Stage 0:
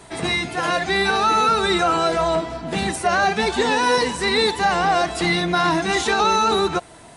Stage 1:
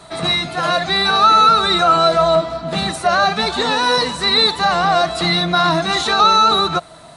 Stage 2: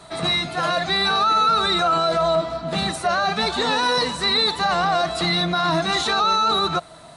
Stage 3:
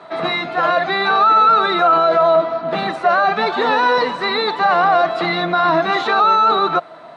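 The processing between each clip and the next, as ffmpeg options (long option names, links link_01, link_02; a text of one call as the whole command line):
ffmpeg -i in.wav -af "equalizer=frequency=160:width_type=o:width=0.33:gain=8,equalizer=frequency=400:width_type=o:width=0.33:gain=-3,equalizer=frequency=630:width_type=o:width=0.33:gain=9,equalizer=frequency=1250:width_type=o:width=0.33:gain=11,equalizer=frequency=4000:width_type=o:width=0.33:gain=11,volume=-1dB" out.wav
ffmpeg -i in.wav -af "alimiter=limit=-9dB:level=0:latency=1:release=11,volume=-3dB" out.wav
ffmpeg -i in.wav -af "highpass=300,lowpass=2100,volume=7dB" out.wav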